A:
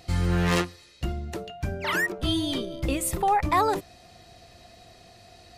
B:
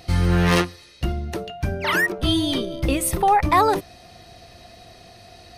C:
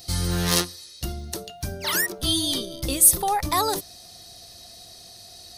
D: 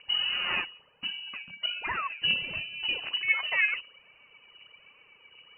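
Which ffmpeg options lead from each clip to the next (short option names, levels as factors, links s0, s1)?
-af "bandreject=f=7300:w=5.6,volume=1.88"
-af "aexciter=amount=5.9:drive=5.1:freq=3600,volume=0.447"
-af "aphaser=in_gain=1:out_gain=1:delay=4.2:decay=0.64:speed=1.3:type=triangular,lowpass=f=2600:t=q:w=0.5098,lowpass=f=2600:t=q:w=0.6013,lowpass=f=2600:t=q:w=0.9,lowpass=f=2600:t=q:w=2.563,afreqshift=-3000,volume=0.562"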